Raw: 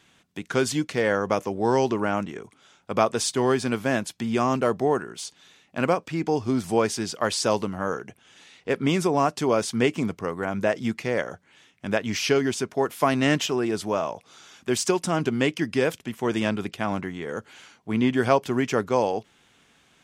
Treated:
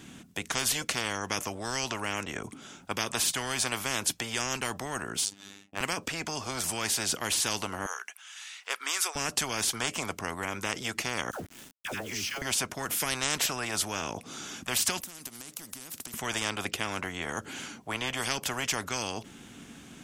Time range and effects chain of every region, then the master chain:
0:05.25–0:05.81: downward expander −54 dBFS + phases set to zero 99.1 Hz
0:07.86–0:09.16: high-pass filter 1,100 Hz 24 dB per octave + upward compression, threshold −53 dBFS
0:11.31–0:12.42: all-pass dispersion lows, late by 94 ms, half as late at 760 Hz + downward compressor, threshold −37 dBFS + centre clipping without the shift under −51 dBFS
0:15.00–0:16.14: high-pass filter 1,300 Hz 6 dB per octave + downward compressor 5 to 1, threshold −45 dBFS + every bin compressed towards the loudest bin 10 to 1
whole clip: octave-band graphic EQ 250/500/1,000/2,000/4,000 Hz +8/−5/−5/−5/−6 dB; every bin compressed towards the loudest bin 10 to 1

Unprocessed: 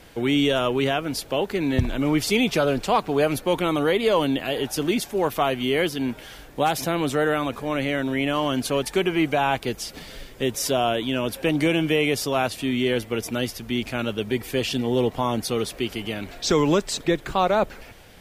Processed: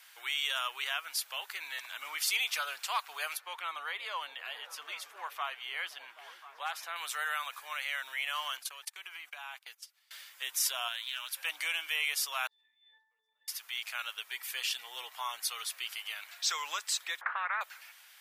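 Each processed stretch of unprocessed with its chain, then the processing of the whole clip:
0:03.37–0:06.96: low-pass filter 1,800 Hz 6 dB per octave + echo through a band-pass that steps 260 ms, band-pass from 220 Hz, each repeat 0.7 octaves, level −5.5 dB
0:08.57–0:10.11: noise gate −30 dBFS, range −24 dB + downward compressor 5 to 1, threshold −29 dBFS
0:10.88–0:11.37: parametric band 460 Hz −11.5 dB 2.1 octaves + highs frequency-modulated by the lows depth 0.1 ms
0:12.47–0:13.48: resonances in every octave A, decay 0.65 s + downward compressor, threshold −49 dBFS
0:17.21–0:17.61: Chebyshev low-pass filter 1,400 Hz, order 4 + every bin compressed towards the loudest bin 4 to 1
whole clip: high-pass filter 1,100 Hz 24 dB per octave; high-shelf EQ 10,000 Hz +8.5 dB; level −5.5 dB

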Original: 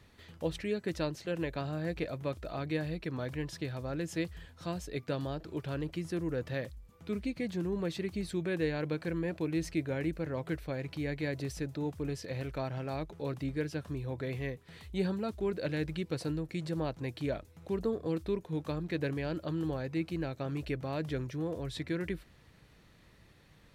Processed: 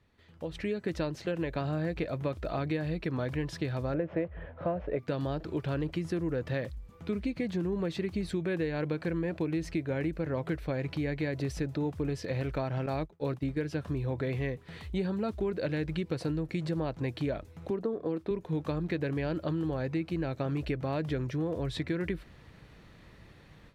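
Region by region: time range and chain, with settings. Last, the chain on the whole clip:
0:03.94–0:04.99: variable-slope delta modulation 64 kbit/s + low-pass filter 2,300 Hz 24 dB per octave + parametric band 580 Hz +15 dB 0.62 octaves
0:12.86–0:13.62: downward expander −37 dBFS + high-shelf EQ 8,500 Hz +4.5 dB
0:17.70–0:18.31: high-pass filter 200 Hz + high-shelf EQ 2,400 Hz −9.5 dB
whole clip: downward compressor, threshold −35 dBFS; high-shelf EQ 5,000 Hz −10 dB; automatic gain control gain up to 15.5 dB; level −8.5 dB

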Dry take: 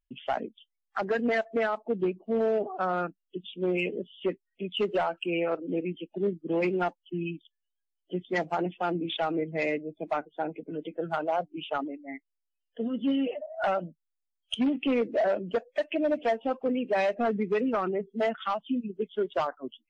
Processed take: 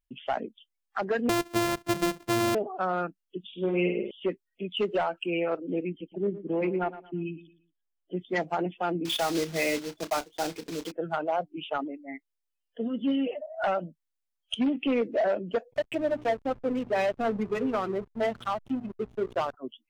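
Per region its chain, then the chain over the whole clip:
0:01.29–0:02.55: samples sorted by size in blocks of 128 samples + multiband upward and downward compressor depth 70%
0:03.47–0:04.11: low-pass filter 2,900 Hz + flutter between parallel walls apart 8.7 metres, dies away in 0.66 s
0:05.89–0:08.17: high-frequency loss of the air 400 metres + repeating echo 114 ms, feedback 30%, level −14.5 dB
0:09.05–0:10.92: one scale factor per block 3 bits + parametric band 5,000 Hz +7 dB 1.4 octaves + double-tracking delay 30 ms −14 dB
0:15.72–0:19.53: mains-hum notches 60/120/180/240/300/360/420/480 Hz + hum with harmonics 120 Hz, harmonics 8, −51 dBFS −6 dB per octave + slack as between gear wheels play −34 dBFS
whole clip: no processing

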